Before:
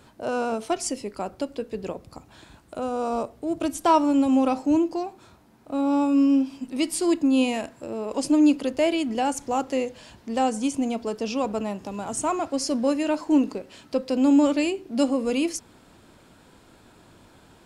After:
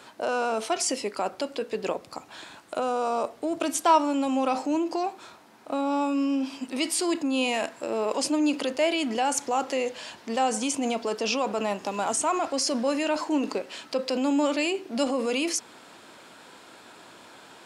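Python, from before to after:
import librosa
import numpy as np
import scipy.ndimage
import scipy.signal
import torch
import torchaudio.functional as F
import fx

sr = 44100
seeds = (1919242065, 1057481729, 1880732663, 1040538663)

p1 = fx.weighting(x, sr, curve='A')
p2 = fx.over_compress(p1, sr, threshold_db=-33.0, ratio=-0.5)
y = p1 + F.gain(torch.from_numpy(p2), -3.0).numpy()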